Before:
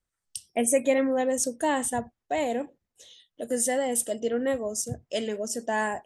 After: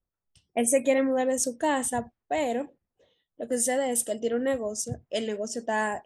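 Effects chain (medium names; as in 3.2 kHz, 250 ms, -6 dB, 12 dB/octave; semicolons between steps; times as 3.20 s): level-controlled noise filter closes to 910 Hz, open at -24.5 dBFS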